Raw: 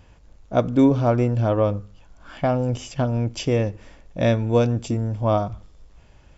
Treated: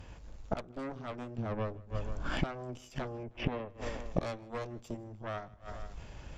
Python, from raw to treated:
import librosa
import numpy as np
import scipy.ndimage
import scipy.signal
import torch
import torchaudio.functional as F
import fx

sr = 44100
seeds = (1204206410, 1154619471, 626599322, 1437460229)

y = fx.steep_lowpass(x, sr, hz=2500.0, slope=36, at=(3.23, 3.7))
y = fx.cheby_harmonics(y, sr, harmonics=(3, 5, 6), levels_db=(-12, -22, -12), full_scale_db=-6.0)
y = fx.rider(y, sr, range_db=10, speed_s=0.5)
y = fx.low_shelf(y, sr, hz=450.0, db=9.5, at=(1.38, 2.43))
y = fx.echo_feedback(y, sr, ms=158, feedback_pct=45, wet_db=-24)
y = fx.gate_flip(y, sr, shuts_db=-25.0, range_db=-27)
y = F.gain(torch.from_numpy(y), 9.0).numpy()